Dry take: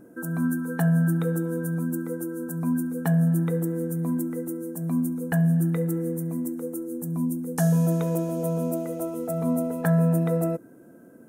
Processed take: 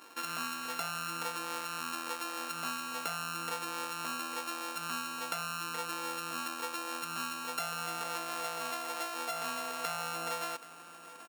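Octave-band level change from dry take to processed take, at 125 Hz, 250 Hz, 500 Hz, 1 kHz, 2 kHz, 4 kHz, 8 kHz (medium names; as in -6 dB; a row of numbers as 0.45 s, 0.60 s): -30.5 dB, -24.0 dB, -15.0 dB, +3.5 dB, +0.5 dB, no reading, 0.0 dB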